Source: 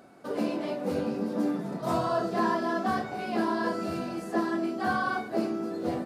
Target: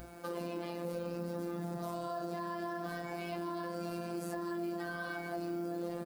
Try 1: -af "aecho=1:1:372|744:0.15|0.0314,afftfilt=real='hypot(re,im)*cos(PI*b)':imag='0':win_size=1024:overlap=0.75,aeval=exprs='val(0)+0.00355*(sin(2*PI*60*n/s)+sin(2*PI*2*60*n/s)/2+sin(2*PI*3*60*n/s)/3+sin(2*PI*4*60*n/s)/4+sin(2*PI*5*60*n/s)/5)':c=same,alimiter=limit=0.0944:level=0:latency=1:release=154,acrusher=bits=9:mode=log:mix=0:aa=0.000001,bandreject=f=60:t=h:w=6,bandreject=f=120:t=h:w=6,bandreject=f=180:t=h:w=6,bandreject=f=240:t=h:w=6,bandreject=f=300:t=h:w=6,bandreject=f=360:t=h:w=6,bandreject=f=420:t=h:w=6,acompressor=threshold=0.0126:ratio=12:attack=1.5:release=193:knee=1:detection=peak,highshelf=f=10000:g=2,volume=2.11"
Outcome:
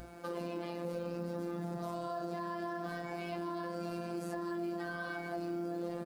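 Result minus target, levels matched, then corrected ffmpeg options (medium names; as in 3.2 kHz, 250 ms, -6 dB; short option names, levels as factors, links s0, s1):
8 kHz band -3.5 dB
-af "aecho=1:1:372|744:0.15|0.0314,afftfilt=real='hypot(re,im)*cos(PI*b)':imag='0':win_size=1024:overlap=0.75,aeval=exprs='val(0)+0.00355*(sin(2*PI*60*n/s)+sin(2*PI*2*60*n/s)/2+sin(2*PI*3*60*n/s)/3+sin(2*PI*4*60*n/s)/4+sin(2*PI*5*60*n/s)/5)':c=same,alimiter=limit=0.0944:level=0:latency=1:release=154,acrusher=bits=9:mode=log:mix=0:aa=0.000001,bandreject=f=60:t=h:w=6,bandreject=f=120:t=h:w=6,bandreject=f=180:t=h:w=6,bandreject=f=240:t=h:w=6,bandreject=f=300:t=h:w=6,bandreject=f=360:t=h:w=6,bandreject=f=420:t=h:w=6,acompressor=threshold=0.0126:ratio=12:attack=1.5:release=193:knee=1:detection=peak,highshelf=f=10000:g=11.5,volume=2.11"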